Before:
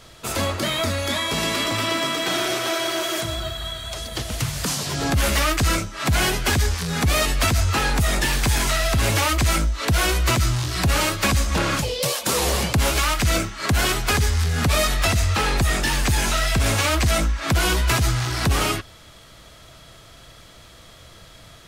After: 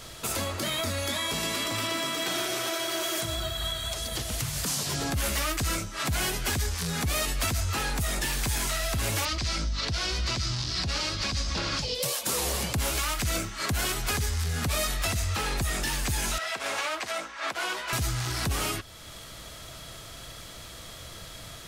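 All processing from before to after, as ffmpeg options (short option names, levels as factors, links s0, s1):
-filter_complex "[0:a]asettb=1/sr,asplit=3[s0][s1][s2];[s0]atrim=end=9.254[s3];[s1]atrim=start=9.25:end=11.95,asetpts=PTS-STARTPTS,afade=t=in:d=0.004:c=qsin,afade=t=out:st=2.696:d=0.004:c=qsin,lowpass=f=4900:t=q:w=3,aeval=exprs='val(0)+0.0316*(sin(2*PI*50*n/s)+sin(2*PI*2*50*n/s)/2+sin(2*PI*3*50*n/s)/3+sin(2*PI*4*50*n/s)/4+sin(2*PI*5*50*n/s)/5)':c=same[s4];[s2]atrim=start=11.946[s5];[s3][s4]acrossfade=d=0.004:c1=hsin:c2=qsin[s6];[s6][s5]acrossfade=d=0.004:c1=qsin:c2=hsin,asettb=1/sr,asplit=3[s7][s8][s9];[s7]atrim=end=16.384[s10];[s8]atrim=start=16.38:end=17.93,asetpts=PTS-STARTPTS,afade=t=in:d=0.004:c=qsin,afade=t=out:st=1.546:d=0.004:c=qsin,highpass=600,aemphasis=mode=reproduction:type=75fm[s11];[s9]atrim=start=17.926[s12];[s10][s11]acrossfade=d=0.004:c1=hsin:c2=qsin[s13];[s13][s12]acrossfade=d=0.004:c1=qsin:c2=hsin,alimiter=limit=0.0668:level=0:latency=1:release=424,highshelf=f=5700:g=7,volume=1.19"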